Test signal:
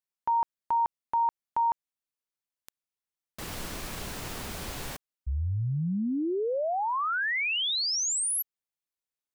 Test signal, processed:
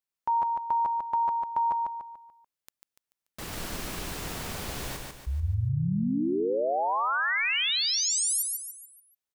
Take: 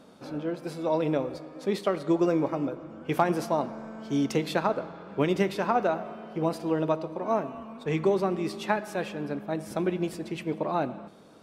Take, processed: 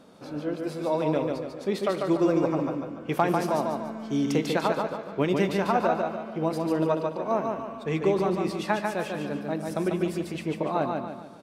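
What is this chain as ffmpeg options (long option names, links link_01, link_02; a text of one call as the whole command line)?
ffmpeg -i in.wav -af "aecho=1:1:145|290|435|580|725:0.668|0.274|0.112|0.0461|0.0189" out.wav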